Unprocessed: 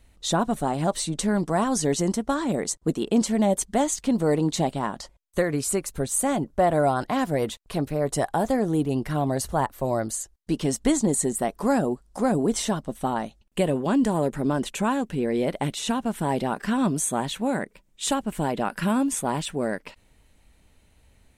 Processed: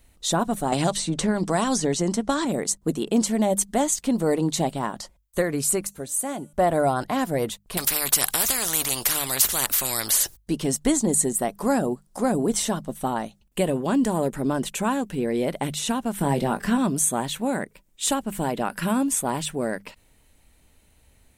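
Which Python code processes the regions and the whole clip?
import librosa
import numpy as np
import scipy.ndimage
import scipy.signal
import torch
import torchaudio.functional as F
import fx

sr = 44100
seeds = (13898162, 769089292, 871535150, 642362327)

y = fx.chain(x, sr, fx.lowpass(hz=7400.0, slope=12),
    fx.band_squash(depth_pct=100), at=(0.72, 2.45))
y = fx.chain(y, sr, fx.highpass(hz=150.0, slope=6),
    fx.comb_fb(f0_hz=290.0, decay_s=1.1, harmonics='all', damping=0.0, mix_pct=50), at=(5.87, 6.53))
y = fx.chain(y, sr, fx.high_shelf(hz=2400.0, db=10.0),
    fx.spectral_comp(ratio=4.0), at=(7.77, 10.37))
y = fx.chain(y, sr, fx.low_shelf(hz=200.0, db=6.5),
    fx.doubler(ms=21.0, db=-8),
    fx.band_squash(depth_pct=40), at=(16.18, 16.78))
y = fx.high_shelf(y, sr, hz=9800.0, db=11.5)
y = fx.hum_notches(y, sr, base_hz=50, count=4)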